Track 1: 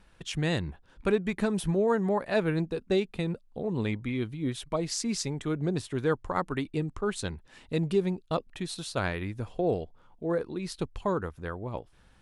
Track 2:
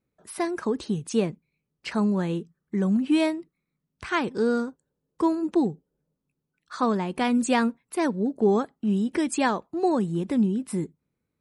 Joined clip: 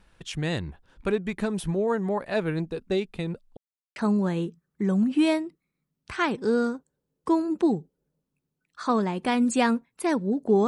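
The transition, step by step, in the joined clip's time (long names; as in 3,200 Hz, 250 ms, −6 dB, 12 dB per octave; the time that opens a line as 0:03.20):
track 1
0:03.57–0:03.96: silence
0:03.96: continue with track 2 from 0:01.89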